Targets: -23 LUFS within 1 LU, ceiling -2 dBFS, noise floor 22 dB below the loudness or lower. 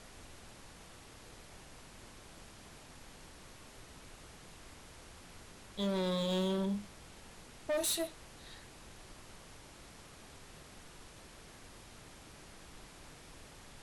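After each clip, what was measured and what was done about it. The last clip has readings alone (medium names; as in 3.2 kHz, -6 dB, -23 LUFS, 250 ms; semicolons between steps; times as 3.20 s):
clipped samples 1.2%; clipping level -30.0 dBFS; noise floor -55 dBFS; noise floor target -58 dBFS; loudness -36.0 LUFS; peak level -30.0 dBFS; loudness target -23.0 LUFS
-> clip repair -30 dBFS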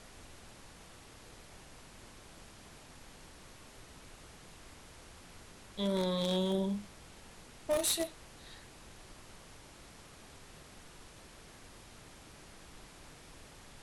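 clipped samples 0.0%; noise floor -55 dBFS; noise floor target -56 dBFS
-> noise print and reduce 6 dB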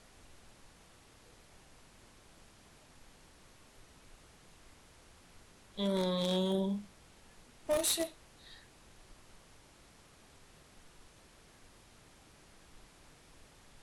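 noise floor -61 dBFS; loudness -34.0 LUFS; peak level -21.0 dBFS; loudness target -23.0 LUFS
-> trim +11 dB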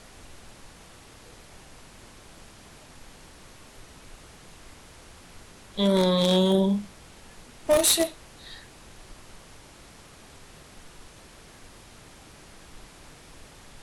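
loudness -23.0 LUFS; peak level -10.0 dBFS; noise floor -50 dBFS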